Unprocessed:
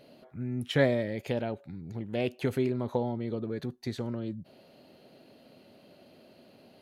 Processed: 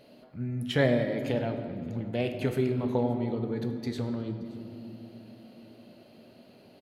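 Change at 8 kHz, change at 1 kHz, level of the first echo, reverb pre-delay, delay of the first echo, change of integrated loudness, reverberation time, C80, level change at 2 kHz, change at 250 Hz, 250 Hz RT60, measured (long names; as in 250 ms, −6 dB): can't be measured, +1.5 dB, −21.5 dB, 5 ms, 575 ms, +2.0 dB, 2.6 s, 8.5 dB, +1.0 dB, +2.5 dB, 4.5 s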